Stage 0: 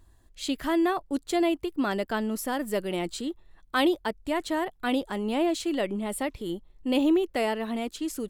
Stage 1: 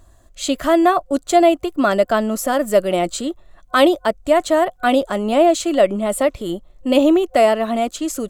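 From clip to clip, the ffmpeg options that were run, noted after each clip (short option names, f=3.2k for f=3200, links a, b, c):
-af "superequalizer=8b=2.82:10b=1.78:15b=1.78,volume=8dB"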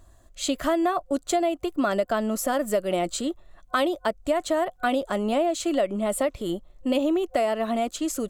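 -af "acompressor=threshold=-16dB:ratio=6,volume=-4dB"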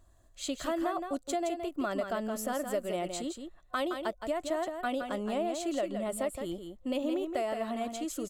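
-af "aecho=1:1:168:0.447,volume=-9dB"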